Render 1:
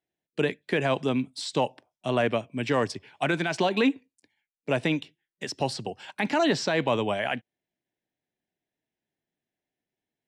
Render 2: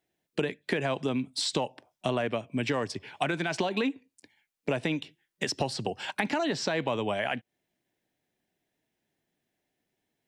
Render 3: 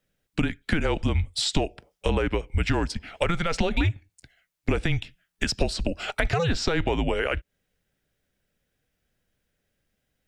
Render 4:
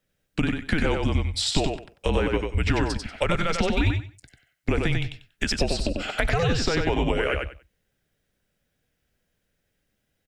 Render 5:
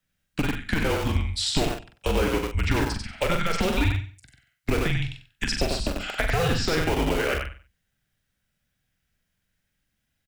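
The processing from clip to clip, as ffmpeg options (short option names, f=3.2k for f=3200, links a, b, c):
-af "acompressor=threshold=-34dB:ratio=6,volume=7.5dB"
-af "afreqshift=-170,lowshelf=f=69:g=6,volume=4dB"
-af "aecho=1:1:94|188|282:0.631|0.126|0.0252"
-filter_complex "[0:a]acrossover=split=290|680|2300[a][b][c][d];[b]acrusher=bits=4:mix=0:aa=0.000001[e];[a][e][c][d]amix=inputs=4:normalize=0,asplit=2[f][g];[g]adelay=43,volume=-6.5dB[h];[f][h]amix=inputs=2:normalize=0,volume=-1.5dB"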